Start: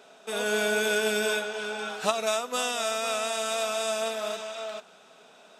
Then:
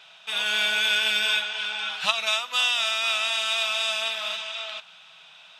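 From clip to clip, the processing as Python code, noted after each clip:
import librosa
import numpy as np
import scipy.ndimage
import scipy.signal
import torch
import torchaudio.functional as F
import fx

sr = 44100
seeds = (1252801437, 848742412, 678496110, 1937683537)

y = fx.curve_eq(x, sr, hz=(160.0, 290.0, 950.0, 1400.0, 3100.0, 7500.0), db=(0, -28, 1, 1, 13, -4))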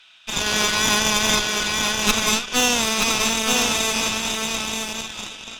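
y = scipy.signal.sosfilt(scipy.signal.butter(2, 1400.0, 'highpass', fs=sr, output='sos'), x)
y = fx.cheby_harmonics(y, sr, harmonics=(8,), levels_db=(-9,), full_scale_db=-5.5)
y = y + 10.0 ** (-4.0 / 20.0) * np.pad(y, (int(927 * sr / 1000.0), 0))[:len(y)]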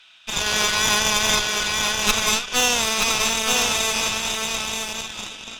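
y = fx.dynamic_eq(x, sr, hz=250.0, q=1.5, threshold_db=-42.0, ratio=4.0, max_db=-7)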